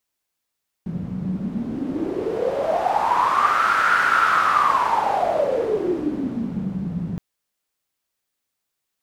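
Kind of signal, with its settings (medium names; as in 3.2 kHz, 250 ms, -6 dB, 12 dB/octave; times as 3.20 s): wind-like swept noise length 6.32 s, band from 170 Hz, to 1.4 kHz, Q 9.8, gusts 1, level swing 9 dB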